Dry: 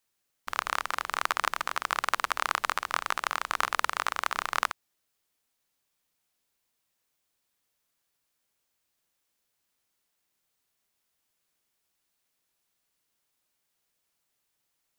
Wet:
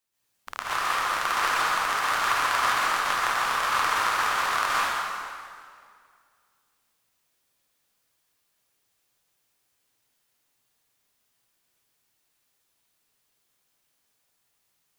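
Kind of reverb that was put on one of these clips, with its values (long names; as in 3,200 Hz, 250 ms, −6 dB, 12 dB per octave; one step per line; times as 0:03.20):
dense smooth reverb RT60 2.1 s, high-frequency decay 0.85×, pre-delay 110 ms, DRR −10 dB
level −4.5 dB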